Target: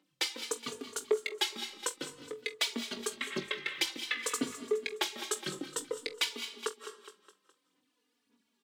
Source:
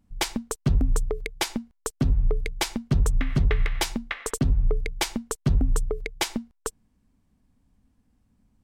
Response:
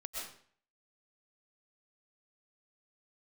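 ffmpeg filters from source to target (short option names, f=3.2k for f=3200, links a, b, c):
-filter_complex "[0:a]equalizer=f=710:t=o:w=0.49:g=-9.5,asplit=2[a][b];[b]acompressor=threshold=-31dB:ratio=6,volume=-2dB[c];[a][c]amix=inputs=2:normalize=0,highpass=f=310:w=0.5412,highpass=f=310:w=1.3066,equalizer=f=3.5k:t=o:w=1.2:g=10,aphaser=in_gain=1:out_gain=1:delay=2.5:decay=0.6:speed=1.8:type=sinusoidal,asplit=2[d][e];[e]adelay=21,volume=-9.5dB[f];[d][f]amix=inputs=2:normalize=0,aecho=1:1:208|416|624|832:0.178|0.08|0.036|0.0162,asplit=2[g][h];[1:a]atrim=start_sample=2205,adelay=46[i];[h][i]afir=irnorm=-1:irlink=0,volume=-11dB[j];[g][j]amix=inputs=2:normalize=0,alimiter=limit=-9dB:level=0:latency=1:release=379,asplit=2[k][l];[l]adelay=3.4,afreqshift=-0.53[m];[k][m]amix=inputs=2:normalize=1,volume=-5.5dB"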